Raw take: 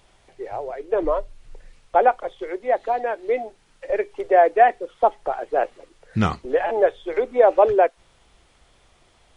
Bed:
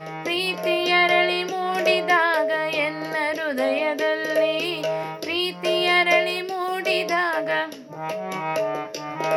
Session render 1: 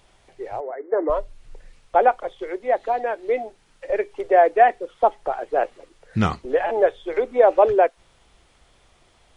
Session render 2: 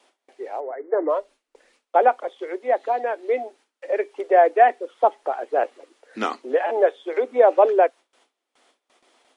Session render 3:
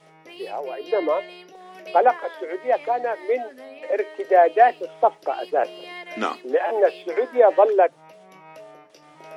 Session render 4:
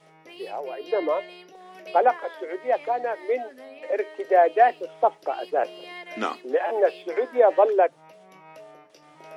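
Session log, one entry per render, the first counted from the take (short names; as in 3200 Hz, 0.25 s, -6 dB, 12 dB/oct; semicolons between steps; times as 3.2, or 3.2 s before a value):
0.6–1.1 brick-wall FIR band-pass 210–2200 Hz
elliptic high-pass 250 Hz, stop band 40 dB; gate with hold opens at -50 dBFS
add bed -19 dB
gain -2.5 dB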